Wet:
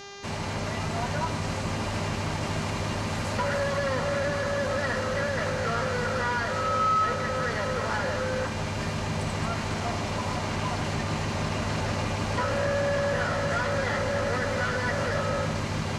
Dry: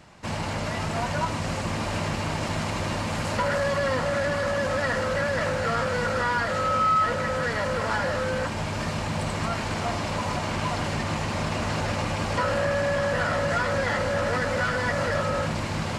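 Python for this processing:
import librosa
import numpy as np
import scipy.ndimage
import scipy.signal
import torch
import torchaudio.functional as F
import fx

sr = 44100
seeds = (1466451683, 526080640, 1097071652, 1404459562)

y = fx.dmg_buzz(x, sr, base_hz=400.0, harmonics=17, level_db=-40.0, tilt_db=-3, odd_only=False)
y = fx.echo_split(y, sr, split_hz=930.0, low_ms=155, high_ms=213, feedback_pct=52, wet_db=-13.0)
y = y * librosa.db_to_amplitude(-3.0)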